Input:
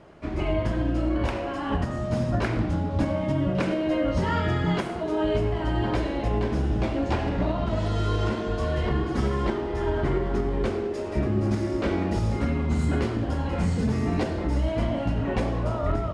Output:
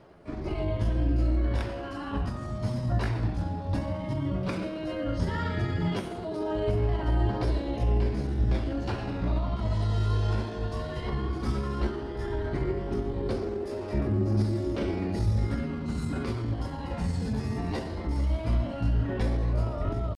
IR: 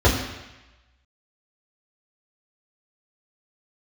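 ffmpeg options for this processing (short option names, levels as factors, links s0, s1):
-filter_complex "[0:a]aphaser=in_gain=1:out_gain=1:delay=1.2:decay=0.28:speed=0.18:type=triangular,aexciter=amount=1.4:drive=5.8:freq=4000,atempo=0.8,asplit=2[s0][s1];[1:a]atrim=start_sample=2205[s2];[s1][s2]afir=irnorm=-1:irlink=0,volume=0.0133[s3];[s0][s3]amix=inputs=2:normalize=0,volume=0.473"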